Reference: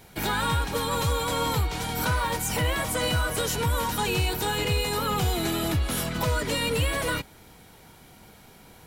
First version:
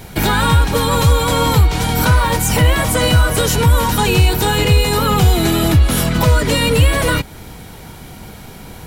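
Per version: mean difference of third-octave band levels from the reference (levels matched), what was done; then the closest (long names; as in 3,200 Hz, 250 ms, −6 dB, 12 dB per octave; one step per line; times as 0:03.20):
2.0 dB: low-shelf EQ 210 Hz +7 dB
in parallel at 0 dB: downward compressor, threshold −31 dBFS, peak gain reduction 14 dB
on the sum: level +7.5 dB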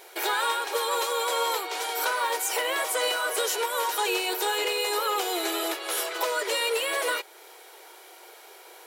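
10.5 dB: linear-phase brick-wall high-pass 330 Hz
in parallel at −3 dB: downward compressor, threshold −40 dBFS, peak gain reduction 15 dB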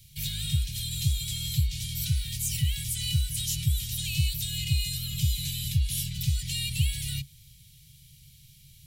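16.0 dB: inverse Chebyshev band-stop filter 380–1,000 Hz, stop band 70 dB
parametric band 140 Hz +10 dB 0.36 octaves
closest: first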